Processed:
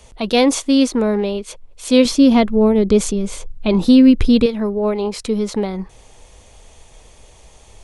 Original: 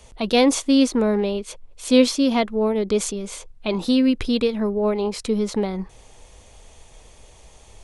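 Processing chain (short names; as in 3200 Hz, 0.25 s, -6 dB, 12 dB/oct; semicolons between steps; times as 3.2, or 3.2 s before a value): 2.05–4.46 low shelf 280 Hz +12 dB; gain +2.5 dB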